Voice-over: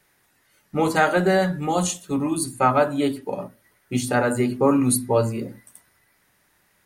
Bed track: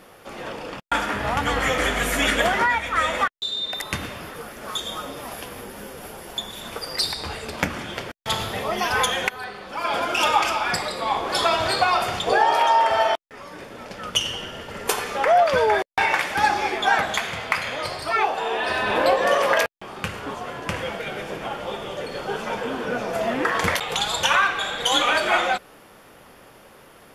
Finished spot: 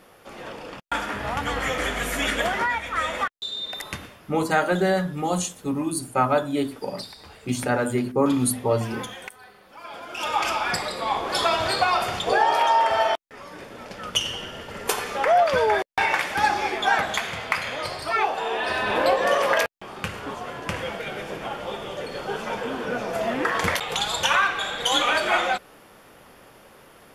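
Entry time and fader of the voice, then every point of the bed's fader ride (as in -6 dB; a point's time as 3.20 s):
3.55 s, -2.5 dB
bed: 3.88 s -4 dB
4.20 s -14.5 dB
10.03 s -14.5 dB
10.48 s -1.5 dB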